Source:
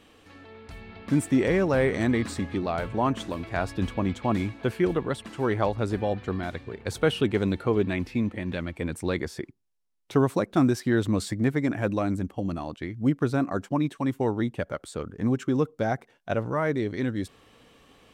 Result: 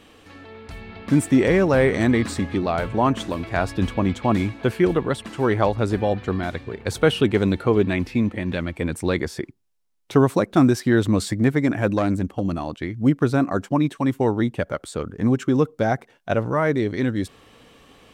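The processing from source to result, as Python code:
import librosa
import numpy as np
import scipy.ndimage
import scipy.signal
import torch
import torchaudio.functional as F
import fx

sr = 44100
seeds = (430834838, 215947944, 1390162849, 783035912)

y = fx.self_delay(x, sr, depth_ms=0.093, at=(11.97, 12.42))
y = y * librosa.db_to_amplitude(5.5)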